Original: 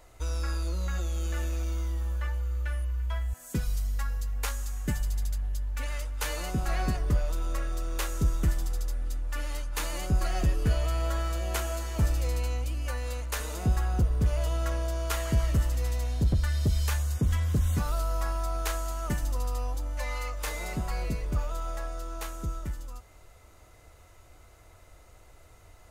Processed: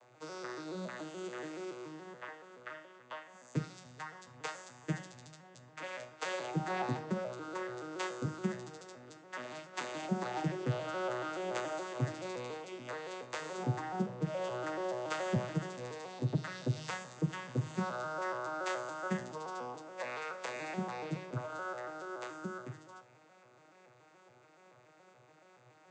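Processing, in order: arpeggiated vocoder major triad, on B2, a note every 0.142 s; HPF 180 Hz 6 dB/oct; low shelf 250 Hz -11.5 dB; reverb RT60 0.50 s, pre-delay 27 ms, DRR 11 dB; gain +7 dB

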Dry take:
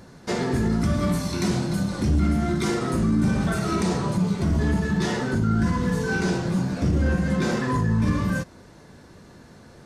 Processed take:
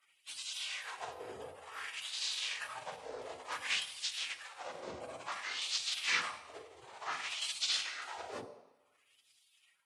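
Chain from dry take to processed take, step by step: weighting filter ITU-R 468; spectral gate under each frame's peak -20 dB weak; LFO band-pass sine 0.56 Hz 450–4100 Hz; on a send: reverb RT60 1.0 s, pre-delay 45 ms, DRR 10 dB; on the sum: gain +8.5 dB

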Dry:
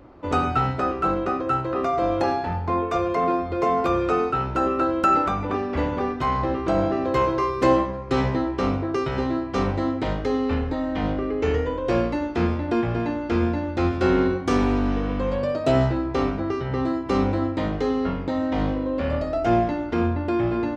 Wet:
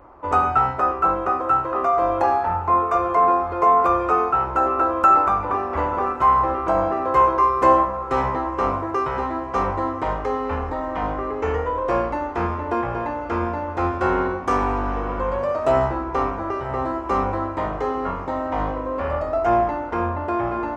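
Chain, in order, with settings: ten-band EQ 125 Hz -6 dB, 250 Hz -7 dB, 1000 Hz +10 dB, 4000 Hz -11 dB; diffused feedback echo 1.117 s, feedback 60%, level -15.5 dB

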